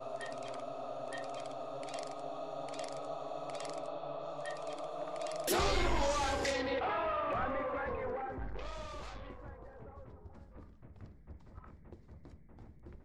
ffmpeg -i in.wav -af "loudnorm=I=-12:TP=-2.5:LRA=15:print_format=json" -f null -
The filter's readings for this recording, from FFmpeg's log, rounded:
"input_i" : "-38.0",
"input_tp" : "-20.1",
"input_lra" : "20.4",
"input_thresh" : "-50.2",